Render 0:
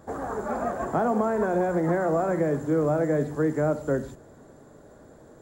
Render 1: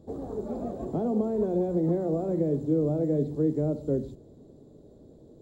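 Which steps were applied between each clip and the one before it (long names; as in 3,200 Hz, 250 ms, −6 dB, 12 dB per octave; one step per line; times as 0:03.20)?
drawn EQ curve 410 Hz 0 dB, 1,600 Hz −27 dB, 3,900 Hz −4 dB, 6,500 Hz −14 dB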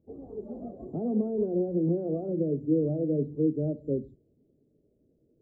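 every bin expanded away from the loudest bin 1.5 to 1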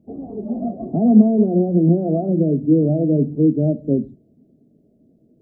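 hollow resonant body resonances 210/670 Hz, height 14 dB, ringing for 25 ms
level +3.5 dB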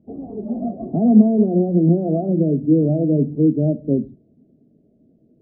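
high-frequency loss of the air 200 metres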